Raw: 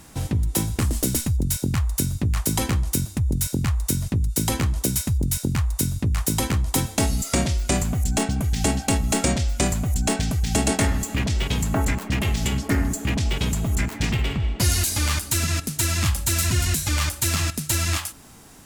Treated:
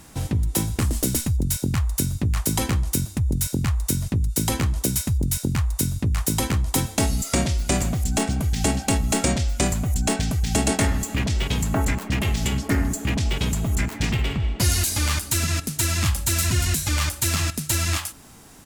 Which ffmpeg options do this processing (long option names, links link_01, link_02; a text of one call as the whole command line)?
ffmpeg -i in.wav -filter_complex "[0:a]asplit=2[link_01][link_02];[link_02]afade=type=in:start_time=7.11:duration=0.01,afade=type=out:start_time=7.65:duration=0.01,aecho=0:1:470|940|1410|1880|2350|2820:0.237137|0.130426|0.0717341|0.0394537|0.0216996|0.0119348[link_03];[link_01][link_03]amix=inputs=2:normalize=0" out.wav